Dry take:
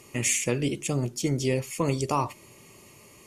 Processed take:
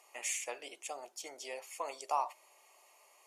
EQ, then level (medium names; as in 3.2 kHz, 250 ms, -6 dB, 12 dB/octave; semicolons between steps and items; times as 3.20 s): ladder high-pass 650 Hz, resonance 60%; -1.0 dB